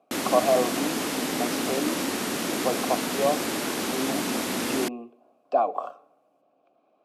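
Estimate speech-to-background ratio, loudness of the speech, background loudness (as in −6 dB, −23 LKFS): −0.5 dB, −28.5 LKFS, −28.0 LKFS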